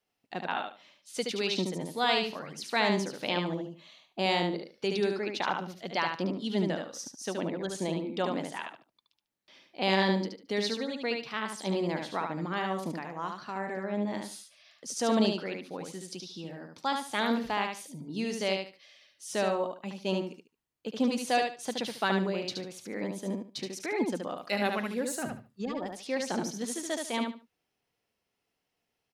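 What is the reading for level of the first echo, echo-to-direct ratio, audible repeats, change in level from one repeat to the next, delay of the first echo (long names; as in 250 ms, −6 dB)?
−4.5 dB, −4.5 dB, 3, −13.0 dB, 73 ms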